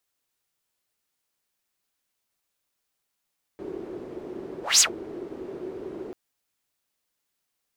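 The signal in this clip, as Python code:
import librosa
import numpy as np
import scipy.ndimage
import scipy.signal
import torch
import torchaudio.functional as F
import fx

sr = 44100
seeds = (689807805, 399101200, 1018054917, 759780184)

y = fx.whoosh(sr, seeds[0], length_s=2.54, peak_s=1.21, rise_s=0.19, fall_s=0.11, ends_hz=370.0, peak_hz=7100.0, q=5.9, swell_db=22.0)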